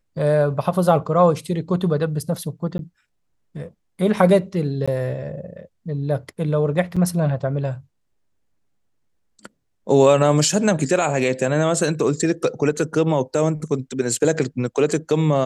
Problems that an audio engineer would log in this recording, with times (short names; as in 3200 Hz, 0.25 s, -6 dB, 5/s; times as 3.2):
2.78–2.79 gap 12 ms
4.86–4.88 gap 16 ms
6.96–6.97 gap 5.8 ms